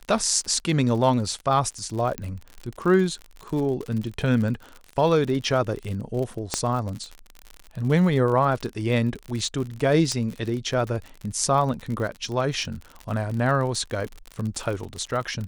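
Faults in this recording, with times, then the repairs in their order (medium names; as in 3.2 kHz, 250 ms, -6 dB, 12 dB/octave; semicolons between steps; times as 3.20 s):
crackle 49 per s -30 dBFS
2.18 s: pop -13 dBFS
6.54 s: pop -8 dBFS
10.12 s: pop -14 dBFS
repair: de-click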